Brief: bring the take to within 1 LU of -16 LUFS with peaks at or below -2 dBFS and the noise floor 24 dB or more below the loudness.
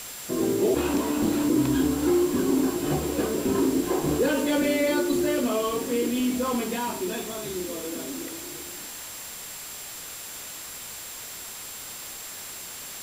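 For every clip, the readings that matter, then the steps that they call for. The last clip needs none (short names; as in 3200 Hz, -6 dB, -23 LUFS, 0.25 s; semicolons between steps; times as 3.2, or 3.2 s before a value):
steady tone 7400 Hz; tone level -43 dBFS; noise floor -39 dBFS; noise floor target -51 dBFS; loudness -27.0 LUFS; peak -12.5 dBFS; loudness target -16.0 LUFS
-> notch 7400 Hz, Q 30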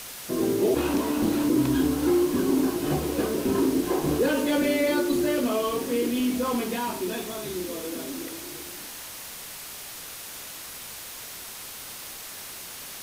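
steady tone none; noise floor -40 dBFS; noise floor target -51 dBFS
-> denoiser 11 dB, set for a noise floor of -40 dBFS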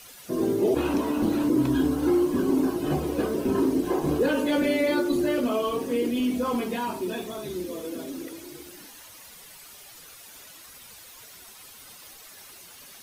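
noise floor -48 dBFS; noise floor target -50 dBFS
-> denoiser 6 dB, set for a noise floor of -48 dBFS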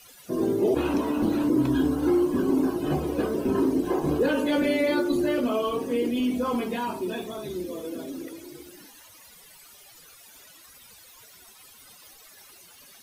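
noise floor -51 dBFS; loudness -25.5 LUFS; peak -13.5 dBFS; loudness target -16.0 LUFS
-> gain +9.5 dB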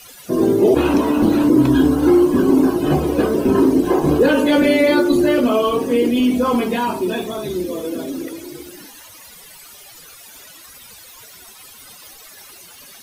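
loudness -16.0 LUFS; peak -4.0 dBFS; noise floor -42 dBFS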